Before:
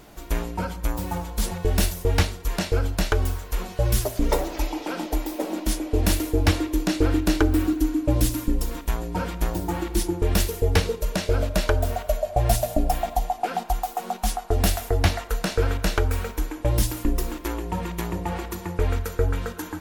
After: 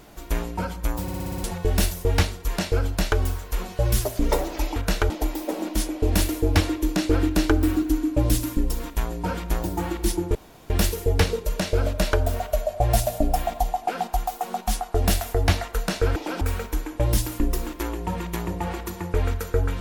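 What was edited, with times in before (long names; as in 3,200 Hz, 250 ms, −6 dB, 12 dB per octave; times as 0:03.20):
0:01.02: stutter in place 0.06 s, 7 plays
0:04.76–0:05.01: swap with 0:15.72–0:16.06
0:10.26: splice in room tone 0.35 s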